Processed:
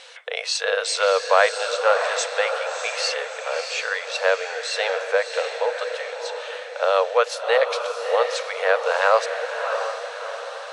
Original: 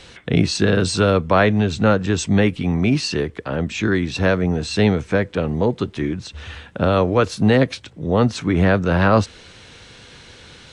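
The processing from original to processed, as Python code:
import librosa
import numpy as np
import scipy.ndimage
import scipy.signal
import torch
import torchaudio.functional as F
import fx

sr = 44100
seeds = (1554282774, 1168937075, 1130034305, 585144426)

y = fx.brickwall_highpass(x, sr, low_hz=450.0)
y = fx.echo_diffused(y, sr, ms=656, feedback_pct=49, wet_db=-6.5)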